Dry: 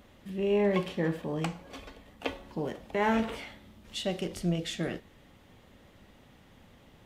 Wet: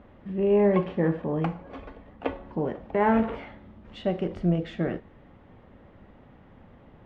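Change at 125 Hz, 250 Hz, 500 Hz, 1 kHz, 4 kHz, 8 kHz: +5.5 dB, +5.5 dB, +5.5 dB, +5.0 dB, −8.5 dB, below −20 dB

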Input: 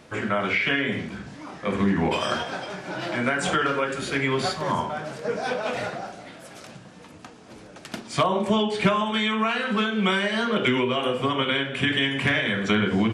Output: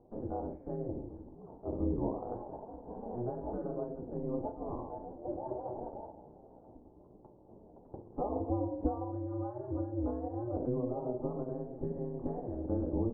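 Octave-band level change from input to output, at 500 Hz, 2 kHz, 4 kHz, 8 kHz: −10.5 dB, below −40 dB, below −40 dB, below −40 dB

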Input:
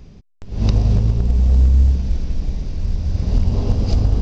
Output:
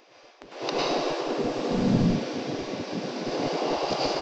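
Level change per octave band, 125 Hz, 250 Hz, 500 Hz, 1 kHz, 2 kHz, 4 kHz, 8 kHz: −16.5 dB, 0.0 dB, +6.5 dB, +9.5 dB, +9.0 dB, +6.5 dB, can't be measured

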